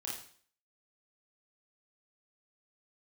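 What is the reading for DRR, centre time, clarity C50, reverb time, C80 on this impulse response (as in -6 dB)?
-5.0 dB, 44 ms, 2.0 dB, 0.50 s, 8.5 dB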